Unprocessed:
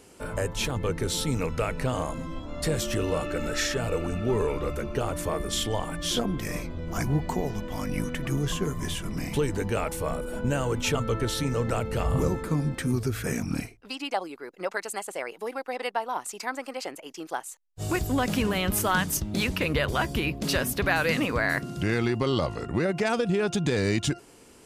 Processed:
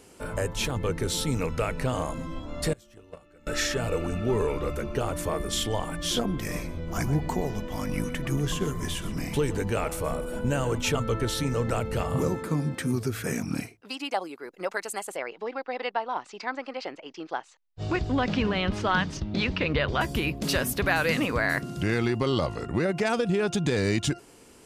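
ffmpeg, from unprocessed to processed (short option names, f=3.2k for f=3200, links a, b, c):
-filter_complex "[0:a]asettb=1/sr,asplit=3[a][b][c];[a]atrim=end=2.734[d];[b]atrim=start=2.73:end=3.47,asetpts=PTS-STARTPTS,afade=t=in:d=0.004:c=qsin,afade=t=out:st=0.736:d=0.004:c=qsin,agate=range=-26dB:threshold=-23dB:ratio=16:release=100:detection=peak[e];[c]atrim=start=3.466[f];[d][e]acrossfade=d=0.004:c1=hsin:c2=qsin[g];[g][f]acrossfade=d=0.004:c1=qsin:c2=hsin,asettb=1/sr,asplit=3[h][i][j];[h]atrim=end=6.384[k];[i]atrim=start=6.38:end=10.78,asetpts=PTS-STARTPTS,afade=t=in:d=0.004:c=qsin,afade=t=out:st=4.396:d=0.004:c=qsin,aecho=1:1:123:0.178,atrim=end_sample=194040[l];[j]atrim=start=10.776[m];[k][l]acrossfade=d=0.004:c1=hsin:c2=qsin[n];[n][m]acrossfade=d=0.004:c1=qsin:c2=hsin,asettb=1/sr,asplit=3[o][p][q];[o]atrim=end=12.024[r];[p]atrim=start=12.02:end=14.46,asetpts=PTS-STARTPTS,afade=t=in:d=0.004:c=qsin,afade=t=out:st=2.436:d=0.004:c=qsin,highpass=110[s];[q]atrim=start=14.456[t];[r][s]acrossfade=d=0.004:c1=hsin:c2=qsin[u];[u][t]acrossfade=d=0.004:c1=qsin:c2=hsin,asettb=1/sr,asplit=3[v][w][x];[v]atrim=end=15.164[y];[w]atrim=start=15.16:end=20.01,asetpts=PTS-STARTPTS,afade=t=in:d=0.004:c=qsin,afade=t=out:st=4.846:d=0.004:c=qsin,lowpass=f=4.8k:w=0.5412,lowpass=f=4.8k:w=1.3066[z];[x]atrim=start=20.006[aa];[y][z]acrossfade=d=0.004:c1=hsin:c2=qsin[ab];[ab][aa]acrossfade=d=0.004:c1=qsin:c2=hsin"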